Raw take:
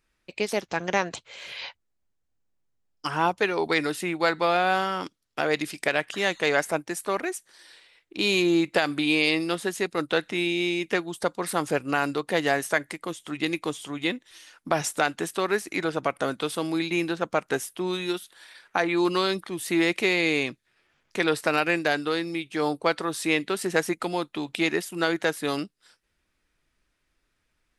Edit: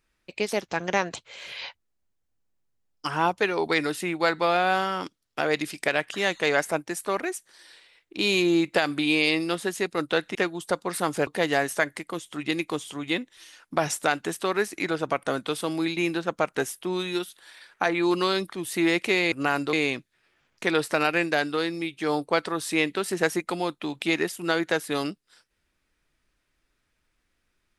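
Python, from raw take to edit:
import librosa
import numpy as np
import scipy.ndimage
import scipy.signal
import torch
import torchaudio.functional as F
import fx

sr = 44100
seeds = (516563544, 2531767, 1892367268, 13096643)

y = fx.edit(x, sr, fx.cut(start_s=10.35, length_s=0.53),
    fx.move(start_s=11.8, length_s=0.41, to_s=20.26), tone=tone)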